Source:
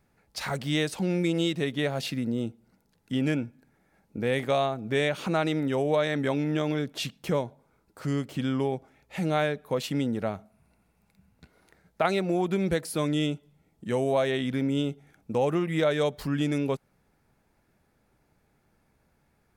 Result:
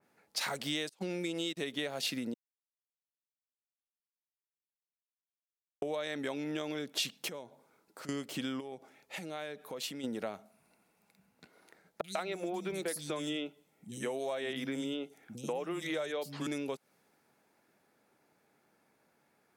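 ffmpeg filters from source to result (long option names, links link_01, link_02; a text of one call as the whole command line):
ffmpeg -i in.wav -filter_complex "[0:a]asettb=1/sr,asplit=3[link_01][link_02][link_03];[link_01]atrim=end=0.894[link_04];[link_02]atrim=start=0.89:end=1.57,asetpts=PTS-STARTPTS,afade=type=in:duration=0.004:curve=qsin,afade=type=out:start_time=0.676:duration=0.004:curve=qsin,agate=range=-27dB:threshold=-29dB:ratio=16:release=100:detection=peak[link_05];[link_03]atrim=start=1.566[link_06];[link_04][link_05]acrossfade=duration=0.004:curve1=hsin:curve2=qsin[link_07];[link_07][link_06]acrossfade=duration=0.004:curve1=qsin:curve2=hsin,asettb=1/sr,asplit=3[link_08][link_09][link_10];[link_08]atrim=end=7.284[link_11];[link_09]atrim=start=7.28:end=8.09,asetpts=PTS-STARTPTS,afade=type=in:duration=0.004:curve=qsin,afade=type=out:start_time=0.806:duration=0.004:curve=qsin,acompressor=threshold=-45dB:ratio=3:attack=3.2:release=140:knee=1:detection=peak[link_12];[link_10]atrim=start=8.086[link_13];[link_11][link_12]acrossfade=duration=0.004:curve1=hsin:curve2=qsin[link_14];[link_14][link_13]acrossfade=duration=0.004:curve1=qsin:curve2=hsin,asplit=3[link_15][link_16][link_17];[link_15]afade=type=out:start_time=8.59:duration=0.02[link_18];[link_16]acompressor=threshold=-39dB:ratio=4:attack=3.2:release=140:knee=1:detection=peak,afade=type=in:start_time=8.59:duration=0.02,afade=type=out:start_time=10.03:duration=0.02[link_19];[link_17]afade=type=in:start_time=10.03:duration=0.02[link_20];[link_18][link_19][link_20]amix=inputs=3:normalize=0,asettb=1/sr,asplit=3[link_21][link_22][link_23];[link_21]atrim=end=12.014[link_24];[link_22]atrim=start=12.01:end=16.47,asetpts=PTS-STARTPTS,afade=type=in:duration=0.004:curve=qsin,afade=type=out:start_time=4.456:duration=0.004:curve=qsin,acrossover=split=200|3900[link_25][link_26][link_27];[link_27]adelay=30[link_28];[link_26]adelay=140[link_29];[link_25][link_29][link_28]amix=inputs=3:normalize=0,atrim=end_sample=196686[link_30];[link_23]atrim=start=16.466[link_31];[link_24][link_30]acrossfade=duration=0.004:curve1=hsin:curve2=qsin[link_32];[link_32][link_31]acrossfade=duration=0.004:curve1=qsin:curve2=hsin,asplit=3[link_33][link_34][link_35];[link_33]atrim=end=2.34,asetpts=PTS-STARTPTS,afade=type=out:start_time=2.336:duration=0.004:curve=hsin[link_36];[link_34]atrim=start=2.34:end=5.82,asetpts=PTS-STARTPTS,volume=0[link_37];[link_35]atrim=start=5.82,asetpts=PTS-STARTPTS,afade=type=in:duration=0.004:curve=hsin[link_38];[link_36][link_37][link_38]concat=n=3:v=0:a=1,highpass=260,acompressor=threshold=-34dB:ratio=6,adynamicequalizer=threshold=0.00158:dfrequency=2600:dqfactor=0.7:tfrequency=2600:tqfactor=0.7:attack=5:release=100:ratio=0.375:range=3:mode=boostabove:tftype=highshelf" out.wav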